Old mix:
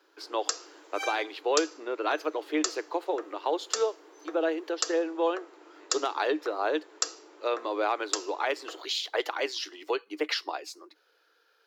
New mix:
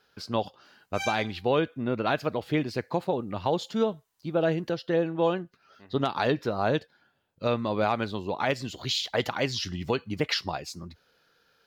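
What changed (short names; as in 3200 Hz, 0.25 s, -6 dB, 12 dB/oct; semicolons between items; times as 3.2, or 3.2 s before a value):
first sound: muted; master: remove rippled Chebyshev high-pass 300 Hz, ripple 3 dB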